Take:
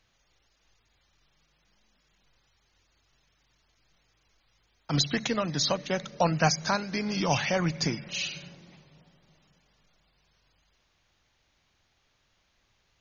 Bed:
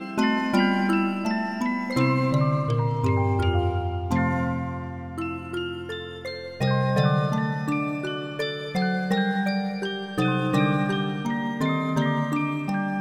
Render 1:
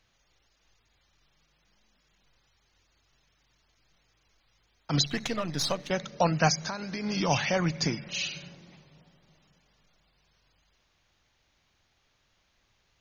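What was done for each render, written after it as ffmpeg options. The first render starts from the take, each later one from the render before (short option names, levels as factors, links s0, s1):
-filter_complex "[0:a]asettb=1/sr,asplit=3[s0][s1][s2];[s0]atrim=end=5.054[s3];[s1]atrim=start=5.05:end=5.91,asetpts=PTS-STARTPTS,afade=t=in:d=0.004:c=qsin,afade=t=out:st=0.856:d=0.004:c=qsin,aeval=exprs='if(lt(val(0),0),0.447*val(0),val(0))':c=same[s4];[s2]atrim=start=5.906[s5];[s3][s4]acrossfade=d=0.004:c1=hsin:c2=qsin[s6];[s6][s5]acrossfade=d=0.004:c1=qsin:c2=hsin,asettb=1/sr,asplit=3[s7][s8][s9];[s7]atrim=end=6.554[s10];[s8]atrim=start=6.55:end=7.04,asetpts=PTS-STARTPTS,afade=t=in:d=0.004:c=qsin,afade=t=out:st=0.486:d=0.004:c=qsin,acompressor=threshold=0.0316:ratio=5:attack=3.2:release=140:knee=1:detection=peak[s11];[s9]atrim=start=7.036[s12];[s10][s11]acrossfade=d=0.004:c1=hsin:c2=qsin[s13];[s13][s12]acrossfade=d=0.004:c1=qsin:c2=hsin"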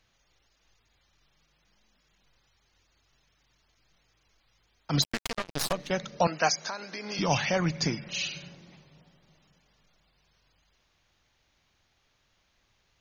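-filter_complex "[0:a]asettb=1/sr,asplit=3[s0][s1][s2];[s0]atrim=end=5.024[s3];[s1]atrim=start=5.02:end=5.73,asetpts=PTS-STARTPTS,afade=t=in:d=0.004:c=qsin,afade=t=out:st=0.706:d=0.004:c=qsin,acrusher=bits=3:mix=0:aa=0.5[s4];[s2]atrim=start=5.726[s5];[s3][s4]acrossfade=d=0.004:c1=hsin:c2=qsin[s6];[s6][s5]acrossfade=d=0.004:c1=qsin:c2=hsin,asettb=1/sr,asplit=3[s7][s8][s9];[s7]atrim=end=6.274[s10];[s8]atrim=start=6.27:end=7.19,asetpts=PTS-STARTPTS,afade=t=in:d=0.004:c=qsin,afade=t=out:st=0.916:d=0.004:c=qsin,highpass=370[s11];[s9]atrim=start=7.186[s12];[s10][s11]acrossfade=d=0.004:c1=hsin:c2=qsin[s13];[s13][s12]acrossfade=d=0.004:c1=qsin:c2=hsin"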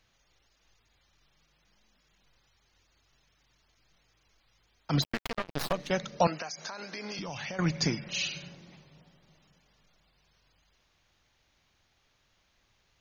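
-filter_complex "[0:a]asettb=1/sr,asplit=3[s0][s1][s2];[s0]atrim=end=4.944[s3];[s1]atrim=start=4.94:end=5.74,asetpts=PTS-STARTPTS,afade=t=in:d=0.004:c=qsin,afade=t=out:st=0.796:d=0.004:c=qsin,equalizer=f=8200:t=o:w=1.7:g=-11[s4];[s2]atrim=start=5.736[s5];[s3][s4]acrossfade=d=0.004:c1=hsin:c2=qsin[s6];[s6][s5]acrossfade=d=0.004:c1=qsin:c2=hsin,asettb=1/sr,asplit=3[s7][s8][s9];[s7]atrim=end=6.394[s10];[s8]atrim=start=6.39:end=7.59,asetpts=PTS-STARTPTS,afade=t=in:d=0.004:c=qsin,afade=t=out:st=1.196:d=0.004:c=qsin,acompressor=threshold=0.02:ratio=16:attack=3.2:release=140:knee=1:detection=peak[s11];[s9]atrim=start=7.586[s12];[s10][s11]acrossfade=d=0.004:c1=hsin:c2=qsin[s13];[s13][s12]acrossfade=d=0.004:c1=qsin:c2=hsin"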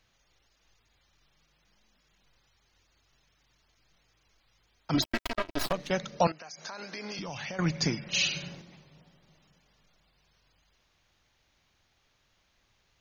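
-filter_complex "[0:a]asettb=1/sr,asplit=3[s0][s1][s2];[s0]atrim=end=4.944[s3];[s1]atrim=start=4.94:end=5.66,asetpts=PTS-STARTPTS,afade=t=in:d=0.004:c=qsin,afade=t=out:st=0.716:d=0.004:c=qsin,aecho=1:1:3.1:0.9,atrim=end_sample=31752[s4];[s2]atrim=start=5.656[s5];[s3][s4]acrossfade=d=0.004:c1=hsin:c2=qsin[s6];[s6][s5]acrossfade=d=0.004:c1=qsin:c2=hsin,asettb=1/sr,asplit=3[s7][s8][s9];[s7]atrim=end=8.134[s10];[s8]atrim=start=8.13:end=8.62,asetpts=PTS-STARTPTS,afade=t=in:d=0.004:c=qsin,afade=t=out:st=0.486:d=0.004:c=qsin,acontrast=27[s11];[s9]atrim=start=8.616[s12];[s10][s11]acrossfade=d=0.004:c1=hsin:c2=qsin[s13];[s13][s12]acrossfade=d=0.004:c1=qsin:c2=hsin,asplit=2[s14][s15];[s14]atrim=end=6.32,asetpts=PTS-STARTPTS,afade=t=out:st=6.316:d=0.004:c=hsin:silence=0.177828[s16];[s15]atrim=start=6.32,asetpts=PTS-STARTPTS,afade=t=in:d=0.43:silence=0.177828[s17];[s16][s17]concat=n=2:v=0:a=1"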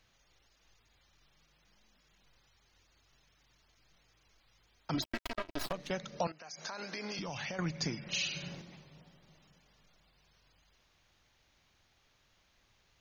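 -af "acompressor=threshold=0.0126:ratio=2"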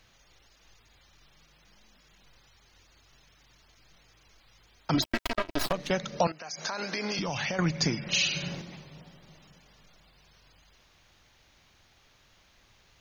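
-af "volume=2.66"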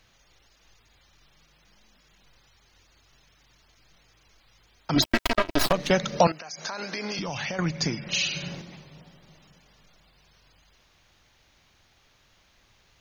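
-filter_complex "[0:a]asettb=1/sr,asplit=3[s0][s1][s2];[s0]atrim=end=4.964[s3];[s1]atrim=start=4.96:end=6.41,asetpts=PTS-STARTPTS,afade=t=in:d=0.004:c=qsin,afade=t=out:st=1.446:d=0.004:c=qsin,acontrast=76[s4];[s2]atrim=start=6.406[s5];[s3][s4]acrossfade=d=0.004:c1=hsin:c2=qsin[s6];[s6][s5]acrossfade=d=0.004:c1=qsin:c2=hsin"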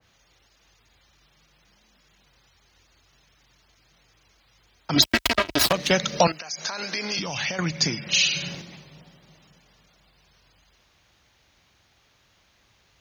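-af "highpass=f=42:w=0.5412,highpass=f=42:w=1.3066,adynamicequalizer=threshold=0.00794:dfrequency=1800:dqfactor=0.7:tfrequency=1800:tqfactor=0.7:attack=5:release=100:ratio=0.375:range=3.5:mode=boostabove:tftype=highshelf"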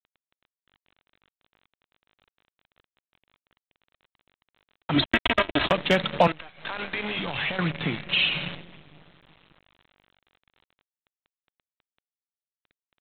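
-af "aresample=8000,acrusher=bits=6:dc=4:mix=0:aa=0.000001,aresample=44100,asoftclip=type=hard:threshold=0.355"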